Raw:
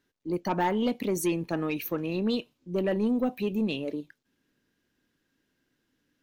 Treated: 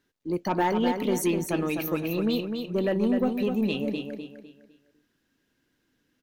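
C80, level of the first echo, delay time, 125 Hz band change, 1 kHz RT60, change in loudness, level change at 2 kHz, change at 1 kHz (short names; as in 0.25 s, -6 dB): none, -6.0 dB, 0.253 s, +2.5 dB, none, +2.5 dB, +2.5 dB, +2.5 dB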